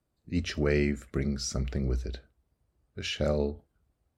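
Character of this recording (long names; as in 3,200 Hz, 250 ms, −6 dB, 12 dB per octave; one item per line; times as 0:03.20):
background noise floor −79 dBFS
spectral slope −5.5 dB per octave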